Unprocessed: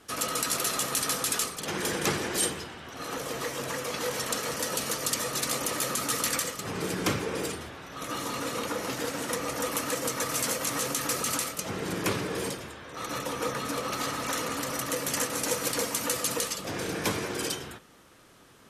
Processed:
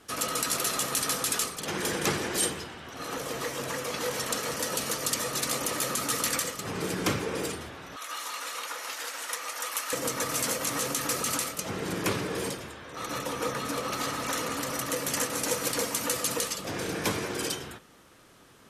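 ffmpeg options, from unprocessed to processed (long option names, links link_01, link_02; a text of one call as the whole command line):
ffmpeg -i in.wav -filter_complex "[0:a]asettb=1/sr,asplit=3[link_01][link_02][link_03];[link_01]atrim=end=7.964[link_04];[link_02]atrim=start=7.96:end=9.93,asetpts=PTS-STARTPTS,afade=type=in:duration=0.004:curve=qsin,afade=type=out:start_time=1.966:duration=0.004:curve=qsin,highpass=1000[link_05];[link_03]atrim=start=9.926[link_06];[link_04][link_05]acrossfade=duration=0.004:curve1=hsin:curve2=qsin[link_07];[link_07][link_06]acrossfade=duration=0.004:curve1=qsin:curve2=hsin" out.wav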